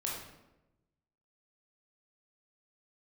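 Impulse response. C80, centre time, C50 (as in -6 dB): 5.0 dB, 55 ms, 1.5 dB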